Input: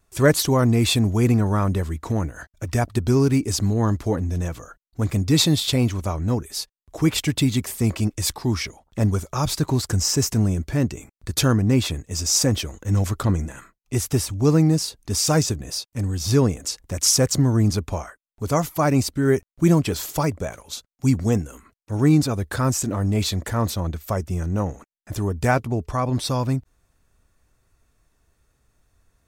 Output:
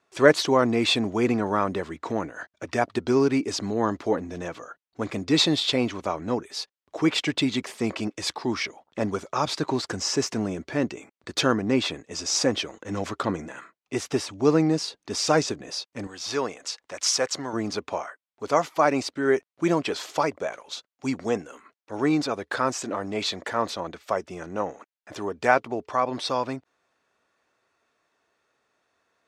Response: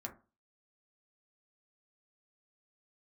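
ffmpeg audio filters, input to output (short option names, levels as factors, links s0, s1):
-af "asetnsamples=n=441:p=0,asendcmd='16.07 highpass f 670;17.53 highpass f 420',highpass=320,lowpass=4200,volume=1.26"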